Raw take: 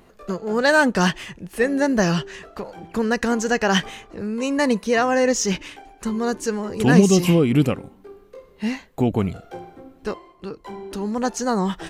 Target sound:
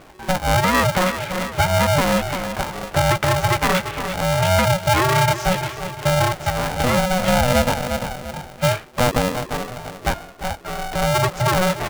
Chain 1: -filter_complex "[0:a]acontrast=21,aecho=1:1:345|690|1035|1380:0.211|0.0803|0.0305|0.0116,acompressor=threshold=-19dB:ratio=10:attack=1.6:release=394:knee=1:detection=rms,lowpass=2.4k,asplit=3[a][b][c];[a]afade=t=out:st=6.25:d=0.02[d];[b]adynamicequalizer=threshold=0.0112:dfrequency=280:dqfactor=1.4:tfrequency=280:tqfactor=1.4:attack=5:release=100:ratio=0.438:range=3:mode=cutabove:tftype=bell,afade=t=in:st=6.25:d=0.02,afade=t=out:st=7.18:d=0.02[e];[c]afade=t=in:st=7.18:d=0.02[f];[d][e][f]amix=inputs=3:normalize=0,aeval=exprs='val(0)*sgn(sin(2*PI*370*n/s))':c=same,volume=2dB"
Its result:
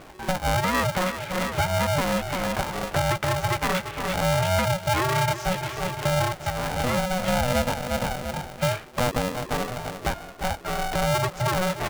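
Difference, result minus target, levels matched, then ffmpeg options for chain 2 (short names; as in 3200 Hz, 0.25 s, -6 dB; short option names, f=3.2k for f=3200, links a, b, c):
compressor: peak gain reduction +6.5 dB
-filter_complex "[0:a]acontrast=21,aecho=1:1:345|690|1035|1380:0.211|0.0803|0.0305|0.0116,acompressor=threshold=-12dB:ratio=10:attack=1.6:release=394:knee=1:detection=rms,lowpass=2.4k,asplit=3[a][b][c];[a]afade=t=out:st=6.25:d=0.02[d];[b]adynamicequalizer=threshold=0.0112:dfrequency=280:dqfactor=1.4:tfrequency=280:tqfactor=1.4:attack=5:release=100:ratio=0.438:range=3:mode=cutabove:tftype=bell,afade=t=in:st=6.25:d=0.02,afade=t=out:st=7.18:d=0.02[e];[c]afade=t=in:st=7.18:d=0.02[f];[d][e][f]amix=inputs=3:normalize=0,aeval=exprs='val(0)*sgn(sin(2*PI*370*n/s))':c=same,volume=2dB"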